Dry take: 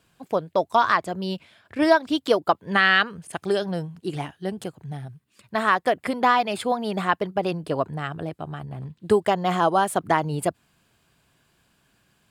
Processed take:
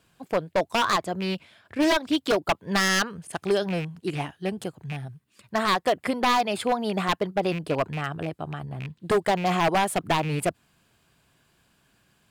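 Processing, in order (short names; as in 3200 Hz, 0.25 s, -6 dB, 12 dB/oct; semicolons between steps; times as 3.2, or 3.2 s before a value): rattling part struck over -30 dBFS, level -26 dBFS; wavefolder -15 dBFS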